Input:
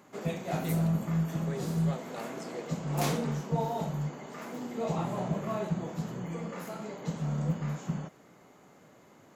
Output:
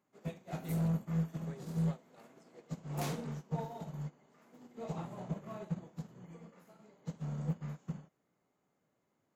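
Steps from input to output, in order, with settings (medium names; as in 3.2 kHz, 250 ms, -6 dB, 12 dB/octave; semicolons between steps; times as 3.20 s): bass shelf 170 Hz +3.5 dB; saturation -22.5 dBFS, distortion -17 dB; upward expansion 2.5:1, over -40 dBFS; trim -2.5 dB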